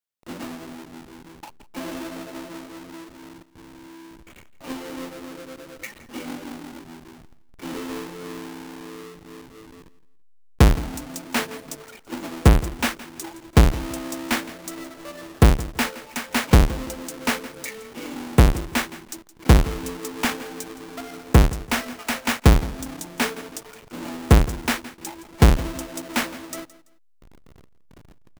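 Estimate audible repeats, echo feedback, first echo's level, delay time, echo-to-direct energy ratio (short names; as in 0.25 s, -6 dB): 2, 27%, -17.5 dB, 0.167 s, -17.0 dB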